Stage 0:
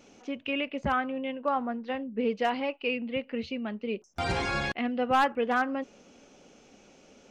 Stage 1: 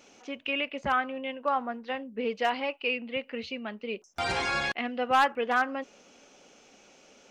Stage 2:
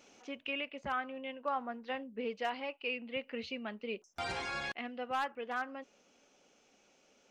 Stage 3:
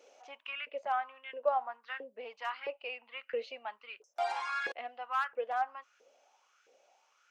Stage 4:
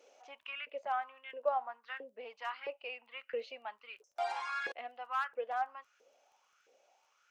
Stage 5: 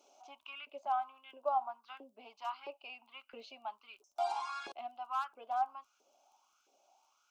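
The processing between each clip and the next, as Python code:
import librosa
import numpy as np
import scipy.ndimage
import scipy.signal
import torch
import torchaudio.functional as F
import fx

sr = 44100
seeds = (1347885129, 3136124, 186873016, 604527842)

y1 = fx.low_shelf(x, sr, hz=390.0, db=-11.5)
y1 = y1 * librosa.db_to_amplitude(3.0)
y2 = fx.rider(y1, sr, range_db=4, speed_s=0.5)
y2 = y2 * librosa.db_to_amplitude(-8.5)
y3 = fx.filter_lfo_highpass(y2, sr, shape='saw_up', hz=1.5, low_hz=450.0, high_hz=1600.0, q=5.7)
y3 = y3 * librosa.db_to_amplitude(-4.5)
y4 = fx.dmg_crackle(y3, sr, seeds[0], per_s=15.0, level_db=-58.0)
y4 = y4 * librosa.db_to_amplitude(-2.5)
y5 = fx.fixed_phaser(y4, sr, hz=490.0, stages=6)
y5 = y5 * librosa.db_to_amplitude(2.5)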